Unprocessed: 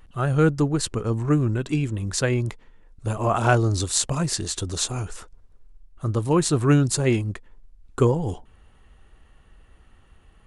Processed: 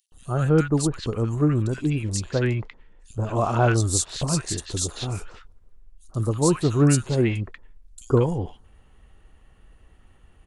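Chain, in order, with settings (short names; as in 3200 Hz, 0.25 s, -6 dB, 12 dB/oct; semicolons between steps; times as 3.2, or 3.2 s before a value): 2.17–3.76 LPF 6100 Hz 12 dB/oct; three bands offset in time highs, lows, mids 0.12/0.19 s, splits 1300/4100 Hz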